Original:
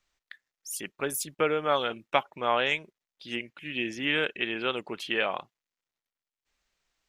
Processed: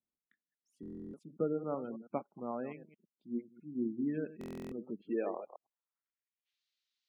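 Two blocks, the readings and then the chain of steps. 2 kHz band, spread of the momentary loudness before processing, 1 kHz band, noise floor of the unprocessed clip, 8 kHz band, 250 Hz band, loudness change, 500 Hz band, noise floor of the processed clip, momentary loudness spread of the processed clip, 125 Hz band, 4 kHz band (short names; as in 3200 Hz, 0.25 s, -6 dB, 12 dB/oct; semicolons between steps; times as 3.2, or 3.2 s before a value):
-26.5 dB, 10 LU, -16.0 dB, under -85 dBFS, under -30 dB, -1.0 dB, -10.0 dB, -8.5 dB, under -85 dBFS, 14 LU, -4.0 dB, under -35 dB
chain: reverse delay 0.109 s, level -10 dB; band-pass sweep 220 Hz -> 3900 Hz, 5.03–6.59; spectral gate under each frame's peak -25 dB strong; stuck buffer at 0.81/4.39, samples 1024, times 13; upward expander 1.5:1, over -51 dBFS; gain +5.5 dB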